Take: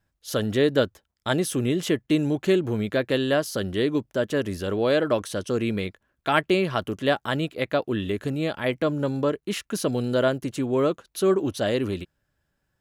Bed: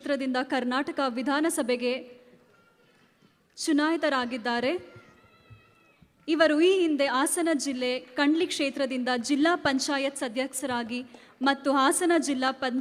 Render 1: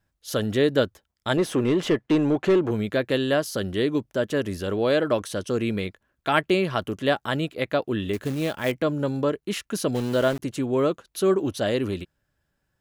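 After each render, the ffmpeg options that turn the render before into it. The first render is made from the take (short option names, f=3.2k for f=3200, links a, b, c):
-filter_complex "[0:a]asettb=1/sr,asplit=3[a][b][c];[a]atrim=end=1.374[d];[b]atrim=start=1.37:end=2.71,asetpts=PTS-STARTPTS,afade=t=in:d=0.004:c=qsin,afade=t=out:st=1.336:d=0.004:c=qsin,asplit=2[e][f];[f]highpass=f=720:p=1,volume=18dB,asoftclip=type=tanh:threshold=-10.5dB[g];[e][g]amix=inputs=2:normalize=0,lowpass=f=1.1k:p=1,volume=-6dB[h];[c]atrim=start=2.706[i];[d][h]acrossfade=d=0.004:c1=hsin:c2=qsin[j];[j][i]acrossfade=d=0.004:c1=qsin:c2=hsin,asettb=1/sr,asplit=3[k][l][m];[k]atrim=end=8.134[n];[l]atrim=start=8.13:end=8.72,asetpts=PTS-STARTPTS,afade=t=in:d=0.004:c=qsin,afade=t=out:st=0.586:d=0.004:c=qsin,acrusher=bits=4:mode=log:mix=0:aa=0.000001[o];[m]atrim=start=8.716[p];[n][o]acrossfade=d=0.004:c1=hsin:c2=qsin[q];[q][p]acrossfade=d=0.004:c1=qsin:c2=hsin,asplit=3[r][s][t];[r]afade=t=out:st=9.94:d=0.02[u];[s]aeval=exprs='val(0)*gte(abs(val(0)),0.0251)':c=same,afade=t=in:st=9.94:d=0.02,afade=t=out:st=10.39:d=0.02[v];[t]afade=t=in:st=10.39:d=0.02[w];[u][v][w]amix=inputs=3:normalize=0"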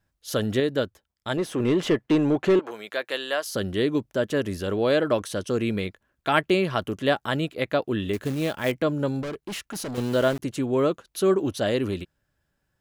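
-filter_complex "[0:a]asettb=1/sr,asplit=3[a][b][c];[a]atrim=end=2.594[d];[b]atrim=start=2.59:end=3.47,asetpts=PTS-STARTPTS,afade=t=in:d=0.004:c=qsin,afade=t=out:st=0.876:d=0.004:c=qsin,highpass=700[e];[c]atrim=start=3.466[f];[d][e]acrossfade=d=0.004:c1=hsin:c2=qsin[g];[g][f]acrossfade=d=0.004:c1=qsin:c2=hsin,asettb=1/sr,asplit=3[h][i][j];[h]atrim=end=9.224[k];[i]atrim=start=9.22:end=9.98,asetpts=PTS-STARTPTS,afade=t=in:d=0.004:c=qsin,afade=t=out:st=0.756:d=0.004:c=qsin,volume=30dB,asoftclip=hard,volume=-30dB[l];[j]atrim=start=9.976[m];[k][l]acrossfade=d=0.004:c1=hsin:c2=qsin[n];[n][m]acrossfade=d=0.004:c1=qsin:c2=hsin,asplit=3[o][p][q];[o]atrim=end=0.602[r];[p]atrim=start=0.598:end=1.602,asetpts=PTS-STARTPTS,volume=-4dB[s];[q]atrim=start=1.598[t];[r][s]acrossfade=d=0.004:c1=hsin:c2=hsin[u];[u][t]acrossfade=d=0.004:c1=hsin:c2=hsin"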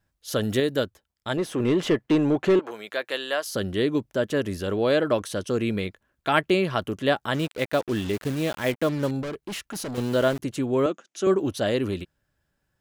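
-filter_complex "[0:a]asettb=1/sr,asplit=3[a][b][c];[a]atrim=end=0.434[d];[b]atrim=start=0.43:end=0.84,asetpts=PTS-STARTPTS,afade=t=in:d=0.004:c=qsin,afade=t=out:st=0.406:d=0.004:c=qsin,highshelf=f=6.8k:g=11[e];[c]atrim=start=0.836[f];[d][e]acrossfade=d=0.004:c1=hsin:c2=qsin[g];[g][f]acrossfade=d=0.004:c1=qsin:c2=hsin,asettb=1/sr,asplit=3[h][i][j];[h]atrim=end=7.344[k];[i]atrim=start=7.34:end=9.11,asetpts=PTS-STARTPTS,afade=t=in:d=0.004:c=qsin,afade=t=out:st=1.766:d=0.004:c=qsin,acrusher=bits=5:mix=0:aa=0.5[l];[j]atrim=start=9.106[m];[k][l]acrossfade=d=0.004:c1=hsin:c2=qsin[n];[n][m]acrossfade=d=0.004:c1=qsin:c2=hsin,asettb=1/sr,asplit=3[o][p][q];[o]atrim=end=10.864[r];[p]atrim=start=10.86:end=11.27,asetpts=PTS-STARTPTS,afade=t=in:d=0.004:c=qsin,afade=t=out:st=0.406:d=0.004:c=qsin,highpass=f=210:w=0.5412,highpass=f=210:w=1.3066,equalizer=f=450:t=q:w=4:g=-7,equalizer=f=1k:t=q:w=4:g=-6,equalizer=f=4.2k:t=q:w=4:g=-9,equalizer=f=6.5k:t=q:w=4:g=5,lowpass=f=7.8k:w=0.5412,lowpass=f=7.8k:w=1.3066[s];[q]atrim=start=11.266[t];[r][s]acrossfade=d=0.004:c1=hsin:c2=qsin[u];[u][t]acrossfade=d=0.004:c1=qsin:c2=hsin"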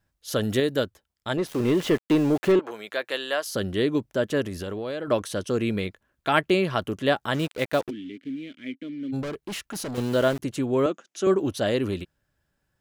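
-filter_complex "[0:a]asettb=1/sr,asplit=3[a][b][c];[a]atrim=end=1.474[d];[b]atrim=start=1.47:end=2.52,asetpts=PTS-STARTPTS,afade=t=in:d=0.004:c=qsin,afade=t=out:st=1.046:d=0.004:c=qsin,aeval=exprs='val(0)*gte(abs(val(0)),0.0178)':c=same[e];[c]atrim=start=2.516[f];[d][e]acrossfade=d=0.004:c1=hsin:c2=qsin[g];[g][f]acrossfade=d=0.004:c1=qsin:c2=hsin,asettb=1/sr,asplit=3[h][i][j];[h]atrim=end=4.434[k];[i]atrim=start=4.43:end=5.08,asetpts=PTS-STARTPTS,afade=t=in:d=0.004:c=qsin,afade=t=out:st=0.646:d=0.004:c=qsin,acompressor=threshold=-28dB:ratio=6:attack=3.2:release=140:knee=1:detection=peak[l];[j]atrim=start=5.076[m];[k][l]acrossfade=d=0.004:c1=hsin:c2=qsin[n];[n][m]acrossfade=d=0.004:c1=qsin:c2=hsin,asplit=3[o][p][q];[o]afade=t=out:st=7.89:d=0.02[r];[p]asplit=3[s][t][u];[s]bandpass=f=270:t=q:w=8,volume=0dB[v];[t]bandpass=f=2.29k:t=q:w=8,volume=-6dB[w];[u]bandpass=f=3.01k:t=q:w=8,volume=-9dB[x];[v][w][x]amix=inputs=3:normalize=0,afade=t=in:st=7.89:d=0.02,afade=t=out:st=9.12:d=0.02[y];[q]afade=t=in:st=9.12:d=0.02[z];[r][y][z]amix=inputs=3:normalize=0"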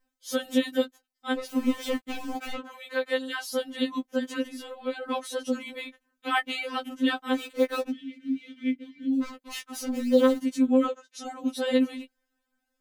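-af "afftfilt=real='re*3.46*eq(mod(b,12),0)':imag='im*3.46*eq(mod(b,12),0)':win_size=2048:overlap=0.75"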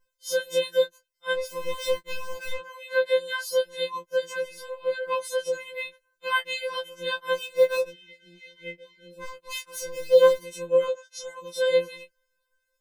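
-af "afftfilt=real='re*2.83*eq(mod(b,8),0)':imag='im*2.83*eq(mod(b,8),0)':win_size=2048:overlap=0.75"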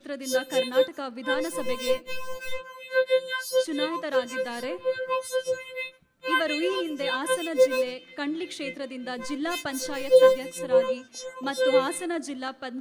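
-filter_complex "[1:a]volume=-7dB[a];[0:a][a]amix=inputs=2:normalize=0"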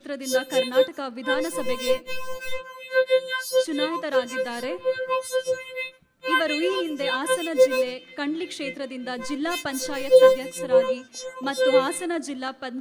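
-af "volume=2.5dB"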